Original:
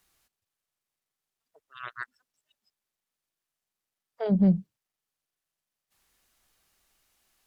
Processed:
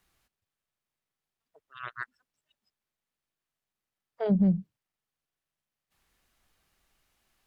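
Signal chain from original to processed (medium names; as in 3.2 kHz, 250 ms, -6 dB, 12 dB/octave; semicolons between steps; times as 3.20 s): tone controls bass +4 dB, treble -6 dB; compression, threshold -20 dBFS, peak gain reduction 6.5 dB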